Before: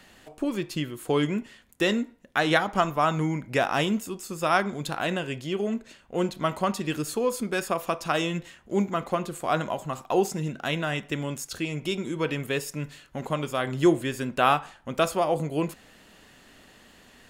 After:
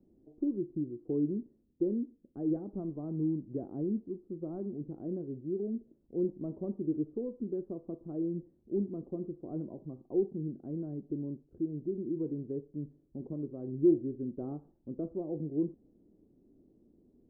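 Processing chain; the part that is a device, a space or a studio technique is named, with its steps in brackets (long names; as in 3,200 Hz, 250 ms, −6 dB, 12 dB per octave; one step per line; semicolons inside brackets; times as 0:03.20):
0:06.24–0:07.21: dynamic equaliser 590 Hz, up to +4 dB, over −37 dBFS, Q 1.1
overdriven synthesiser ladder filter (soft clipping −14.5 dBFS, distortion −17 dB; transistor ladder low-pass 390 Hz, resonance 55%)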